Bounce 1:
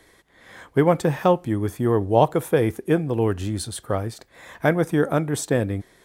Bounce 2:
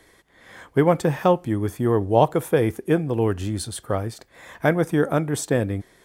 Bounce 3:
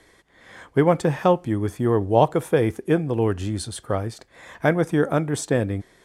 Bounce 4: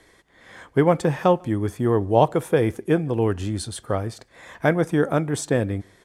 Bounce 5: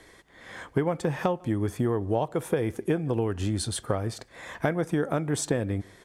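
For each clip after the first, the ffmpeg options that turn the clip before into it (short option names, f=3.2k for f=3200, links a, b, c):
-af "bandreject=f=3.9k:w=24"
-af "lowpass=10k"
-filter_complex "[0:a]asplit=2[a][b];[b]adelay=145.8,volume=-30dB,highshelf=f=4k:g=-3.28[c];[a][c]amix=inputs=2:normalize=0"
-af "acompressor=threshold=-24dB:ratio=10,volume=2dB"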